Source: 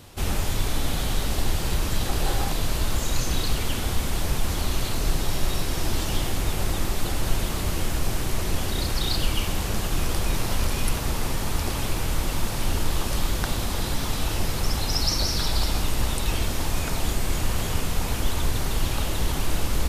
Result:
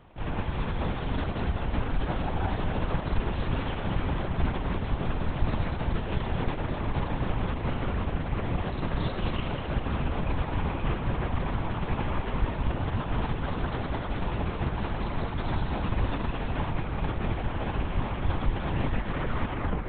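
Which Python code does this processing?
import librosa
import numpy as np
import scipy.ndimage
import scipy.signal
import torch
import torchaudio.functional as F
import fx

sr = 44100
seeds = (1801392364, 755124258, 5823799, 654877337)

p1 = fx.tape_stop_end(x, sr, length_s=1.54)
p2 = scipy.signal.sosfilt(scipy.signal.butter(2, 2400.0, 'lowpass', fs=sr, output='sos'), p1)
p3 = fx.peak_eq(p2, sr, hz=730.0, db=3.5, octaves=1.9)
p4 = p3 + fx.echo_split(p3, sr, split_hz=760.0, low_ms=510, high_ms=205, feedback_pct=52, wet_db=-5, dry=0)
p5 = fx.lpc_vocoder(p4, sr, seeds[0], excitation='whisper', order=10)
y = p5 * 10.0 ** (-7.0 / 20.0)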